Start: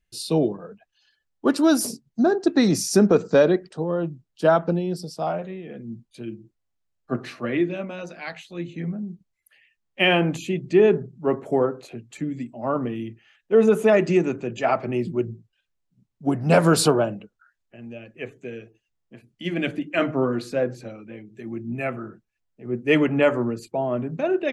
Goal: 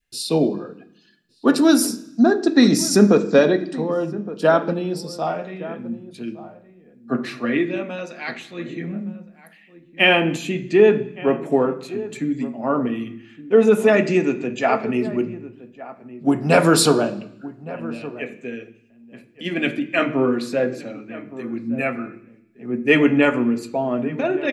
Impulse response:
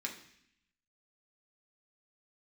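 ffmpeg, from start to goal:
-filter_complex "[0:a]asplit=2[s0][s1];[1:a]atrim=start_sample=2205[s2];[s1][s2]afir=irnorm=-1:irlink=0,volume=0.891[s3];[s0][s3]amix=inputs=2:normalize=0,adynamicequalizer=threshold=0.0447:dfrequency=940:dqfactor=0.96:tfrequency=940:tqfactor=0.96:attack=5:release=100:ratio=0.375:range=2:mode=cutabove:tftype=bell,asplit=2[s4][s5];[s5]adelay=1166,volume=0.158,highshelf=f=4000:g=-26.2[s6];[s4][s6]amix=inputs=2:normalize=0"

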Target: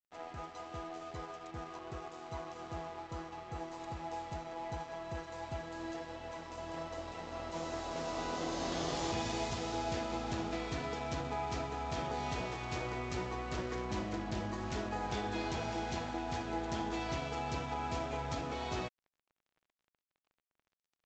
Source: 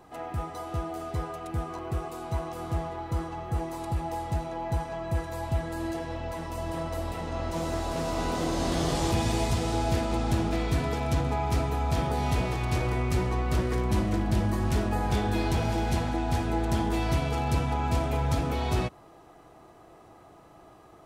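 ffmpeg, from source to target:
-af "lowshelf=f=190:g=-12,aresample=16000,aeval=exprs='sgn(val(0))*max(abs(val(0))-0.00473,0)':c=same,aresample=44100,volume=0.562"

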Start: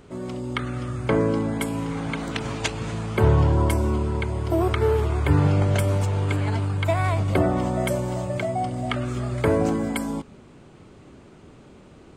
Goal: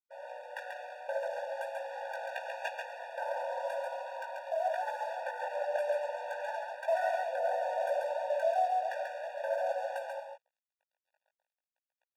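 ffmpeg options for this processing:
-filter_complex "[0:a]equalizer=f=63:t=o:w=1.8:g=5,asplit=2[s0][s1];[s1]aeval=exprs='clip(val(0),-1,0.112)':c=same,volume=0.708[s2];[s0][s2]amix=inputs=2:normalize=0,acrossover=split=160 2200:gain=0.112 1 0.0794[s3][s4][s5];[s3][s4][s5]amix=inputs=3:normalize=0,bandreject=f=1000:w=18,aeval=exprs='sgn(val(0))*max(abs(val(0))-0.0158,0)':c=same,flanger=delay=16:depth=4.3:speed=2.9,aecho=1:1:138:0.596,alimiter=limit=0.141:level=0:latency=1:release=32,afftfilt=real='re*eq(mod(floor(b*sr/1024/480),2),1)':imag='im*eq(mod(floor(b*sr/1024/480),2),1)':win_size=1024:overlap=0.75,volume=0.794"

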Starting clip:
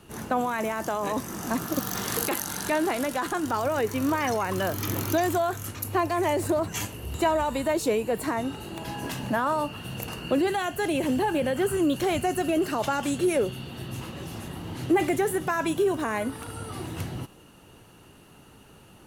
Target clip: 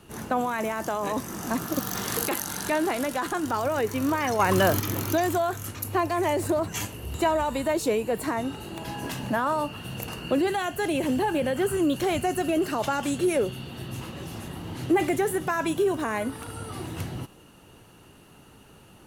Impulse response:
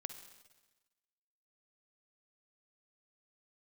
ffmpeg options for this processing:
-filter_complex "[0:a]asettb=1/sr,asplit=3[s0][s1][s2];[s0]atrim=end=4.394[s3];[s1]atrim=start=4.39:end=4.8,asetpts=PTS-STARTPTS,afade=t=in:d=0.004:c=qsin,afade=t=out:st=0.406:d=0.004:c=qsin,acontrast=77[s4];[s2]atrim=start=4.796[s5];[s3][s4]acrossfade=d=0.004:c1=hsin:c2=qsin[s6];[s6][s5]acrossfade=d=0.004:c1=qsin:c2=hsin"

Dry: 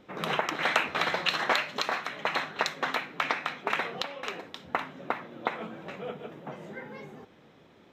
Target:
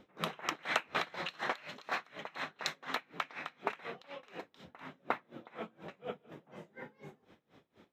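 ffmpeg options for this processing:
-af "aeval=exprs='val(0)*pow(10,-26*(0.5-0.5*cos(2*PI*4.1*n/s))/20)':c=same,volume=0.794"

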